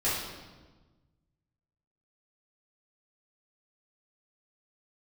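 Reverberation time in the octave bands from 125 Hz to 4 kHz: 2.1, 1.6, 1.4, 1.2, 1.1, 1.0 seconds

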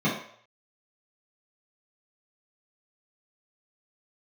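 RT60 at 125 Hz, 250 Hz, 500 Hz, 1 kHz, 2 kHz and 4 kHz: 0.45, 0.40, 0.60, 0.60, 0.55, 0.55 seconds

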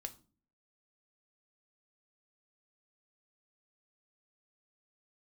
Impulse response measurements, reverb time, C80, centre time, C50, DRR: 0.40 s, 22.5 dB, 5 ms, 17.0 dB, 7.0 dB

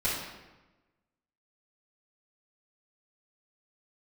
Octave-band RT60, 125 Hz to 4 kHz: 1.3, 1.3, 1.1, 1.1, 1.0, 0.80 seconds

